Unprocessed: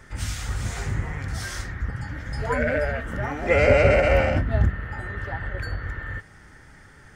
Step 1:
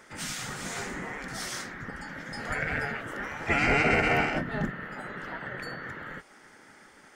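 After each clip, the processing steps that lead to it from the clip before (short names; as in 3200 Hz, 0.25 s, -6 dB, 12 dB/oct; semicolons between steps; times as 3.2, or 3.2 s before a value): spectral gate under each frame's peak -10 dB weak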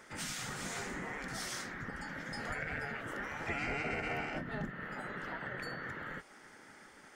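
compressor 3:1, threshold -35 dBFS, peak gain reduction 11.5 dB; gain -2.5 dB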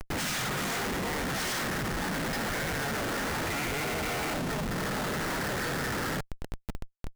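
in parallel at -3 dB: limiter -35 dBFS, peak gain reduction 10.5 dB; on the sum: Schmitt trigger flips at -42 dBFS; gain +6.5 dB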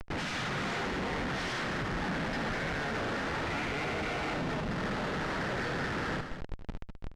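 LPF 4000 Hz 12 dB/oct; on a send: loudspeakers at several distances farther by 25 m -11 dB, 69 m -9 dB; on the sum: gain -2.5 dB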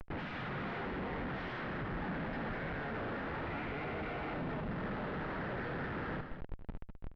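air absorption 400 m; gain -4 dB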